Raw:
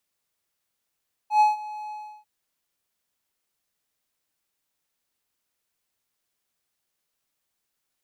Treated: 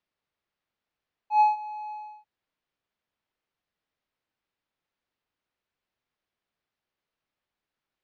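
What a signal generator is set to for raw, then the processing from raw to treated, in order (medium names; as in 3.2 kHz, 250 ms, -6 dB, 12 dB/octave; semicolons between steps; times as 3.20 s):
ADSR triangle 848 Hz, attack 104 ms, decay 157 ms, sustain -19.5 dB, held 0.61 s, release 334 ms -11 dBFS
distance through air 240 m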